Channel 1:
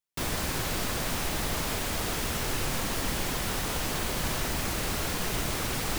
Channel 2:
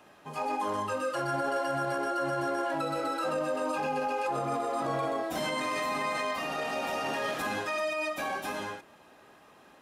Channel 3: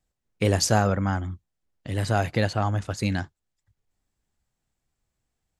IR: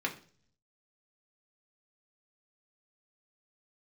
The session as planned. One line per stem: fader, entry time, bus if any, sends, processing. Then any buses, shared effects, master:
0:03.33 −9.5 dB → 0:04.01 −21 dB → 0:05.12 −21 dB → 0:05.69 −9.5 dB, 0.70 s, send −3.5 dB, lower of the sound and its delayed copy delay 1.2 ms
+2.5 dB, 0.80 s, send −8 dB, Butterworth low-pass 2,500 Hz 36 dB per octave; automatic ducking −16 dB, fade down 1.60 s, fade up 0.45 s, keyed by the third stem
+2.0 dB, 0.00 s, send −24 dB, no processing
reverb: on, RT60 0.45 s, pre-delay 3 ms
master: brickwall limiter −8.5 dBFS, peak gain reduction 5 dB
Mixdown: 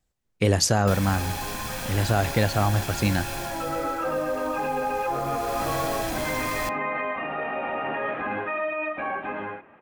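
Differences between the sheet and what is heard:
stem 1 −9.5 dB → −2.5 dB
reverb return −9.5 dB

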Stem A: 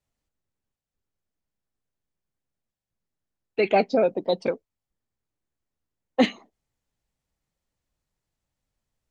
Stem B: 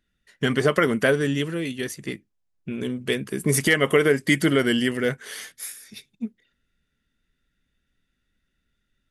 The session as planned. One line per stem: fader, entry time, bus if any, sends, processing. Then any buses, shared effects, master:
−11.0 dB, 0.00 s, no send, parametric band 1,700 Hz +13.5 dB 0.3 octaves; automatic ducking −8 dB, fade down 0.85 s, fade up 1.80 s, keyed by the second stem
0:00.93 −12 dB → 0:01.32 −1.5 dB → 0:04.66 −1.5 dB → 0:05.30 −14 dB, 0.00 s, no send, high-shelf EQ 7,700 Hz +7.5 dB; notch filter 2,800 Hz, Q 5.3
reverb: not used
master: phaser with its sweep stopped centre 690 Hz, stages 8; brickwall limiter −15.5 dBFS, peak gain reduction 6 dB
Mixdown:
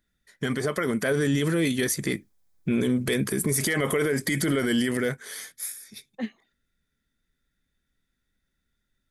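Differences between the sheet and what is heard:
stem B −12.0 dB → −1.5 dB
master: missing phaser with its sweep stopped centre 690 Hz, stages 8

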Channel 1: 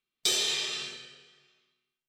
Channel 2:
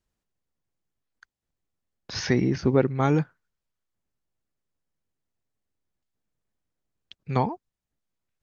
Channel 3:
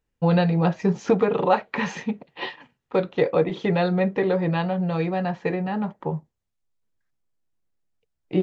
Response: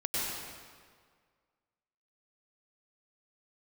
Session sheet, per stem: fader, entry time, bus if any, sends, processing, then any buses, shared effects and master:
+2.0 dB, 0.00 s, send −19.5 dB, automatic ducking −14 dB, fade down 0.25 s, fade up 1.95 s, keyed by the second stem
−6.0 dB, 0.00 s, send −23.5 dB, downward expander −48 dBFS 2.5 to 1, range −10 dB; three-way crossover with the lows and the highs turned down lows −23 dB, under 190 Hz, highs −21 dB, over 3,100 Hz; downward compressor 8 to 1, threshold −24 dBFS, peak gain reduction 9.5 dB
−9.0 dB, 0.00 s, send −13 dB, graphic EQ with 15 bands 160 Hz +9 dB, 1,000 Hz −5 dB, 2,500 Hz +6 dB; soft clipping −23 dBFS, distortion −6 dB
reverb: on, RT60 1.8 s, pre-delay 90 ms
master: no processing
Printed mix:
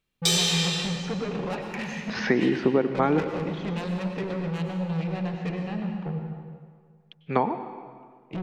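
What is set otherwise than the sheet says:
stem 2 −6.0 dB → +5.5 dB
reverb return +7.0 dB

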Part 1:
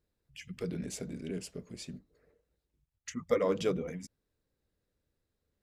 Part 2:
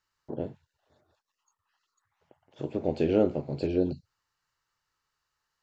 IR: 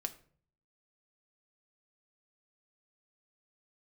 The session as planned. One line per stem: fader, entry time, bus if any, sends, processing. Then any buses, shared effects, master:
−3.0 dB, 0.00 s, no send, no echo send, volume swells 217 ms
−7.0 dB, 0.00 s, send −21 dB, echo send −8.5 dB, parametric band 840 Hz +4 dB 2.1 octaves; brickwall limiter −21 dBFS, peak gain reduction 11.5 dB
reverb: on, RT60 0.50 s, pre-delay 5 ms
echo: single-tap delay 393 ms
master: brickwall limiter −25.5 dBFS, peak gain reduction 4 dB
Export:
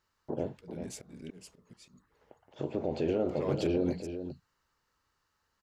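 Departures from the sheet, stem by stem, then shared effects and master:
stem 2 −7.0 dB → −0.5 dB
master: missing brickwall limiter −25.5 dBFS, peak gain reduction 4 dB

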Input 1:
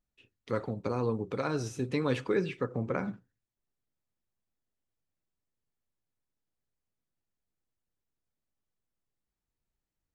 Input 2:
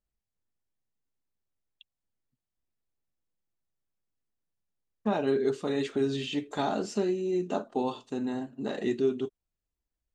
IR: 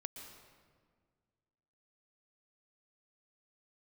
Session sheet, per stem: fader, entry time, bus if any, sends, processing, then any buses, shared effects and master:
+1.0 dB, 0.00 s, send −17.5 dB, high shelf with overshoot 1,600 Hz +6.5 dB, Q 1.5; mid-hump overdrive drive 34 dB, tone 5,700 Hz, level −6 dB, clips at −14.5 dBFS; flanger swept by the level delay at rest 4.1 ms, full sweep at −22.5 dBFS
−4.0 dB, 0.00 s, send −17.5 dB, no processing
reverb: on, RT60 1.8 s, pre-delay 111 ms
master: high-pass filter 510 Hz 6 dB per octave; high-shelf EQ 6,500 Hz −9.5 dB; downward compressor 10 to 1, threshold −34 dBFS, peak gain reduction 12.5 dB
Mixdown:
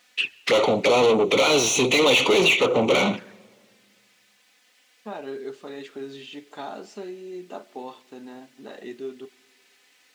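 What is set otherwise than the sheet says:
stem 1 +1.0 dB → +8.5 dB
master: missing downward compressor 10 to 1, threshold −34 dBFS, peak gain reduction 12.5 dB

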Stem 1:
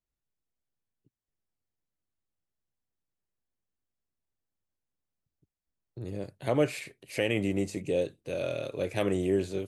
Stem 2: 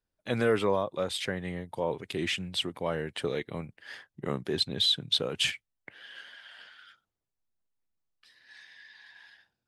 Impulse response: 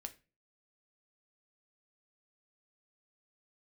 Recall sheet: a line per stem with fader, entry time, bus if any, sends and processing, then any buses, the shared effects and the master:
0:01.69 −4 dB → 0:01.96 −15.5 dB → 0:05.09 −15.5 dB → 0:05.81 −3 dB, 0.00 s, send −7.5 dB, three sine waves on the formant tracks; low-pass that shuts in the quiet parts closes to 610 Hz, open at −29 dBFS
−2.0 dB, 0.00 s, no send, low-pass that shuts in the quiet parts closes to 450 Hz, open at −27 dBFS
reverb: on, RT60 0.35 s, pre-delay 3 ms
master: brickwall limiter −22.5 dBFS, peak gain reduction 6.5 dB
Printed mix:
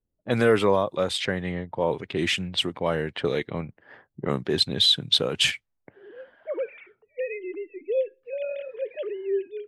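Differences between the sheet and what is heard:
stem 2 −2.0 dB → +6.0 dB
master: missing brickwall limiter −22.5 dBFS, peak gain reduction 6.5 dB

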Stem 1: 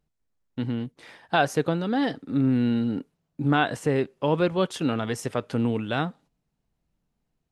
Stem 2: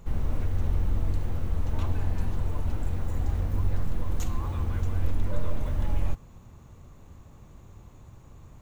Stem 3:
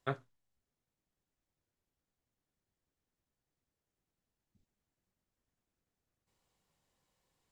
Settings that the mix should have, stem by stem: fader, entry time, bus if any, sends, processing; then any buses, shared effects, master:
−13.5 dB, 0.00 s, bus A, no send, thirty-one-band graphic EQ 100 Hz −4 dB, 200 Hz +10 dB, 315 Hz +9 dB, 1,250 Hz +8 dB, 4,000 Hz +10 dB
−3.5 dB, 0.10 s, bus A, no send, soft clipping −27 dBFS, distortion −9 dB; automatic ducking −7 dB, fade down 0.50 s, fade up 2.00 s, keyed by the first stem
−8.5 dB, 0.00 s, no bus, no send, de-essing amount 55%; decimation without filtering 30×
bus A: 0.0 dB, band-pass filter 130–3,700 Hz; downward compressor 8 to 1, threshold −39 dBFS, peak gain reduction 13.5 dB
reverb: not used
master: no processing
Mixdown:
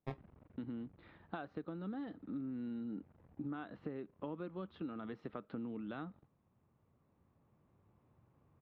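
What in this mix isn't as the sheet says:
stem 2 −3.5 dB → −15.0 dB
master: extra high-frequency loss of the air 370 metres

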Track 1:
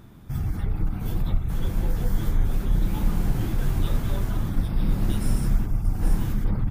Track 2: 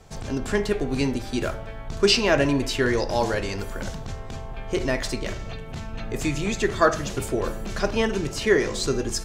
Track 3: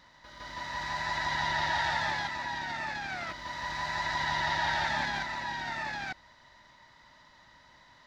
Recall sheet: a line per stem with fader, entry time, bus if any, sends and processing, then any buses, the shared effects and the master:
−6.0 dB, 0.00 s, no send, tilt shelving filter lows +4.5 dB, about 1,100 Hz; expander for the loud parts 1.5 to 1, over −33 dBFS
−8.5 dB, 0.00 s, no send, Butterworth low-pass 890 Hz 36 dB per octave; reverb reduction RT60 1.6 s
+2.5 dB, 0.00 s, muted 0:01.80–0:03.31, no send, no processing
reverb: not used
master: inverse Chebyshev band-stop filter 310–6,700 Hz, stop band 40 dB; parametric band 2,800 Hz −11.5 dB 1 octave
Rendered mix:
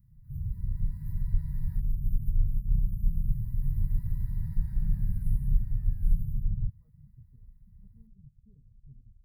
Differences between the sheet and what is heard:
stem 2 −8.5 dB → −17.0 dB
master: missing parametric band 2,800 Hz −11.5 dB 1 octave

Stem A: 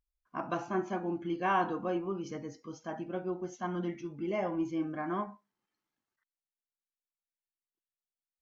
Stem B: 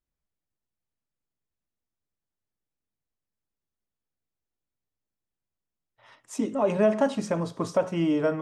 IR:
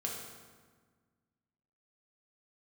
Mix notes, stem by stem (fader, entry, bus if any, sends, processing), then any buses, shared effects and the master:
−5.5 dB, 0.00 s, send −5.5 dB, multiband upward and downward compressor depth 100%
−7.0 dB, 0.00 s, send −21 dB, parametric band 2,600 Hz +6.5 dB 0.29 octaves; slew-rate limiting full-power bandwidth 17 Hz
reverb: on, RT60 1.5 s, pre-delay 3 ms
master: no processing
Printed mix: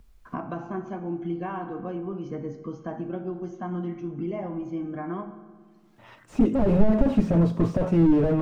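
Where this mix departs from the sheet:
stem B −7.0 dB → +4.0 dB
master: extra spectral tilt −2.5 dB per octave

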